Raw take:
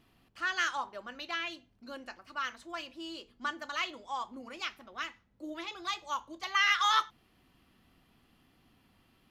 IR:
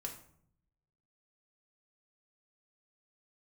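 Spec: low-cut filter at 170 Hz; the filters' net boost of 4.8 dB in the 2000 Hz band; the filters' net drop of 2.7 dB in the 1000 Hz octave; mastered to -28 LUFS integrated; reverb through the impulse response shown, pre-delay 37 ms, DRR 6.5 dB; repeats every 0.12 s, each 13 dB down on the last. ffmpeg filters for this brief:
-filter_complex "[0:a]highpass=170,equalizer=f=1k:t=o:g=-7,equalizer=f=2k:t=o:g=7.5,aecho=1:1:120|240|360:0.224|0.0493|0.0108,asplit=2[a][b];[1:a]atrim=start_sample=2205,adelay=37[c];[b][c]afir=irnorm=-1:irlink=0,volume=-4.5dB[d];[a][d]amix=inputs=2:normalize=0,volume=2dB"

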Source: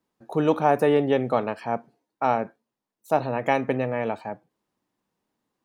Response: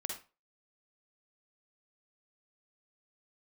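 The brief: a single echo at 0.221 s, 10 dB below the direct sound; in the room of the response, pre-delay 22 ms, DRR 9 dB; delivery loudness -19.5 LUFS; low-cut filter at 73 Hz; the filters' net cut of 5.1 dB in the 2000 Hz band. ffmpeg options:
-filter_complex "[0:a]highpass=73,equalizer=f=2k:t=o:g=-6.5,aecho=1:1:221:0.316,asplit=2[a][b];[1:a]atrim=start_sample=2205,adelay=22[c];[b][c]afir=irnorm=-1:irlink=0,volume=-9.5dB[d];[a][d]amix=inputs=2:normalize=0,volume=5dB"

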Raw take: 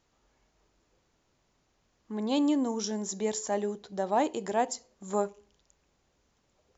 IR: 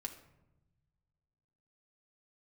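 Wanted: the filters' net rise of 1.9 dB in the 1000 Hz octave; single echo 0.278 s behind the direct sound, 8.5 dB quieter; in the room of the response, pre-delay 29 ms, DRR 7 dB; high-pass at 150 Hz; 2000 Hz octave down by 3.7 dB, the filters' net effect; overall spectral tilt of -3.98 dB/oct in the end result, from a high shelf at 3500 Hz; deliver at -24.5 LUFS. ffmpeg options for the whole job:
-filter_complex "[0:a]highpass=150,equalizer=f=1k:t=o:g=3.5,equalizer=f=2k:t=o:g=-6.5,highshelf=f=3.5k:g=3,aecho=1:1:278:0.376,asplit=2[a][b];[1:a]atrim=start_sample=2205,adelay=29[c];[b][c]afir=irnorm=-1:irlink=0,volume=-4.5dB[d];[a][d]amix=inputs=2:normalize=0,volume=5dB"

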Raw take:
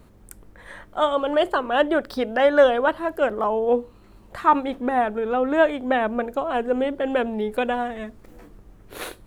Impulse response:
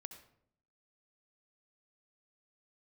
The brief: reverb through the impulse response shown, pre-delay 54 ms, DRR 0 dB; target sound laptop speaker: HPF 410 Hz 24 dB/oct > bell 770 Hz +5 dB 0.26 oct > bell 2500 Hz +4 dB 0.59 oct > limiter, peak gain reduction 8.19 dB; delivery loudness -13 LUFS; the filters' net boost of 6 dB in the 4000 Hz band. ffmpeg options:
-filter_complex "[0:a]equalizer=f=4k:t=o:g=6,asplit=2[a][b];[1:a]atrim=start_sample=2205,adelay=54[c];[b][c]afir=irnorm=-1:irlink=0,volume=5dB[d];[a][d]amix=inputs=2:normalize=0,highpass=f=410:w=0.5412,highpass=f=410:w=1.3066,equalizer=f=770:t=o:w=0.26:g=5,equalizer=f=2.5k:t=o:w=0.59:g=4,volume=8dB,alimiter=limit=-2.5dB:level=0:latency=1"

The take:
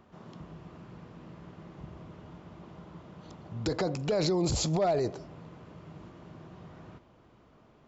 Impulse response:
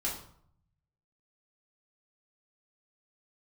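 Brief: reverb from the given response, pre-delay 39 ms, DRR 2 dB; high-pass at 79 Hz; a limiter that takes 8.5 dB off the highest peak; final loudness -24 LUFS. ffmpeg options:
-filter_complex "[0:a]highpass=79,alimiter=level_in=3.5dB:limit=-24dB:level=0:latency=1,volume=-3.5dB,asplit=2[a][b];[1:a]atrim=start_sample=2205,adelay=39[c];[b][c]afir=irnorm=-1:irlink=0,volume=-6dB[d];[a][d]amix=inputs=2:normalize=0,volume=15dB"

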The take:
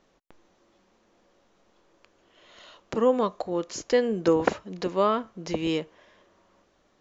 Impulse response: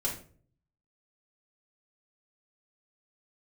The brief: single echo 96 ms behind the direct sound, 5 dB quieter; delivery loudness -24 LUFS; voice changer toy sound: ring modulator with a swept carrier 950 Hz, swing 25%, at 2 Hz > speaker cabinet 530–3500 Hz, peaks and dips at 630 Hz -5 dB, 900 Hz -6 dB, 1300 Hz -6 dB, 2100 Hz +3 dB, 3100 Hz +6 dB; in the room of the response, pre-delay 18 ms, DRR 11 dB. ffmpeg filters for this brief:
-filter_complex "[0:a]aecho=1:1:96:0.562,asplit=2[a][b];[1:a]atrim=start_sample=2205,adelay=18[c];[b][c]afir=irnorm=-1:irlink=0,volume=-16dB[d];[a][d]amix=inputs=2:normalize=0,aeval=exprs='val(0)*sin(2*PI*950*n/s+950*0.25/2*sin(2*PI*2*n/s))':c=same,highpass=530,equalizer=f=630:t=q:w=4:g=-5,equalizer=f=900:t=q:w=4:g=-6,equalizer=f=1.3k:t=q:w=4:g=-6,equalizer=f=2.1k:t=q:w=4:g=3,equalizer=f=3.1k:t=q:w=4:g=6,lowpass=f=3.5k:w=0.5412,lowpass=f=3.5k:w=1.3066,volume=5.5dB"

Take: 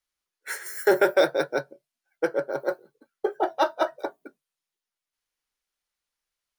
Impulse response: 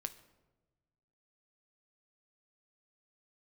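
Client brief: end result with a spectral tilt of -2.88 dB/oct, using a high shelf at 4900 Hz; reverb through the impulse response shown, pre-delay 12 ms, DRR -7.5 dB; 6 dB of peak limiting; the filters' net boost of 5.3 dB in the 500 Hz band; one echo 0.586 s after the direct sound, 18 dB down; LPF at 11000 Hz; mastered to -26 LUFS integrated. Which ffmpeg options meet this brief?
-filter_complex "[0:a]lowpass=11k,equalizer=f=500:t=o:g=6.5,highshelf=f=4.9k:g=-5,alimiter=limit=-10dB:level=0:latency=1,aecho=1:1:586:0.126,asplit=2[a][b];[1:a]atrim=start_sample=2205,adelay=12[c];[b][c]afir=irnorm=-1:irlink=0,volume=9.5dB[d];[a][d]amix=inputs=2:normalize=0,volume=-10dB"

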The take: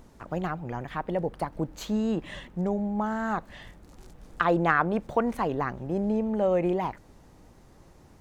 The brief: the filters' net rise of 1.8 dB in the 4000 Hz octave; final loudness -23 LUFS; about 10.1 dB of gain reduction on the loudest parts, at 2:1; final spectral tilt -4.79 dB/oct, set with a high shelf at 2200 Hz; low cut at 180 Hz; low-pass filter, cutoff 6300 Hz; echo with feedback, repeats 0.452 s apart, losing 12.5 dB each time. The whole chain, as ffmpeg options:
-af "highpass=180,lowpass=6.3k,highshelf=f=2.2k:g=-4.5,equalizer=f=4k:t=o:g=7,acompressor=threshold=-38dB:ratio=2,aecho=1:1:452|904|1356:0.237|0.0569|0.0137,volume=14.5dB"

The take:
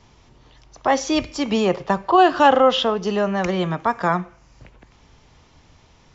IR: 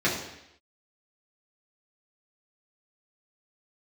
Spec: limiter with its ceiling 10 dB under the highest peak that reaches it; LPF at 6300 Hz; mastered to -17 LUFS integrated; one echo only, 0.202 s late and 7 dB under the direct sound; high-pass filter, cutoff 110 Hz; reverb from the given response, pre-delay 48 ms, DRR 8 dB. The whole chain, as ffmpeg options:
-filter_complex "[0:a]highpass=110,lowpass=6.3k,alimiter=limit=-13.5dB:level=0:latency=1,aecho=1:1:202:0.447,asplit=2[a][b];[1:a]atrim=start_sample=2205,adelay=48[c];[b][c]afir=irnorm=-1:irlink=0,volume=-22dB[d];[a][d]amix=inputs=2:normalize=0,volume=5dB"

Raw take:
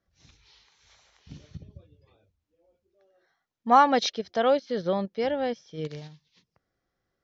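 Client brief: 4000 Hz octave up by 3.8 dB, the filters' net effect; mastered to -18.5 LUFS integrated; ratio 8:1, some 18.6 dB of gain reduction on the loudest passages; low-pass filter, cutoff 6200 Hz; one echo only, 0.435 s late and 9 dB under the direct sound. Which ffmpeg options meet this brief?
-af "lowpass=6.2k,equalizer=f=4k:t=o:g=5,acompressor=threshold=-32dB:ratio=8,aecho=1:1:435:0.355,volume=19dB"

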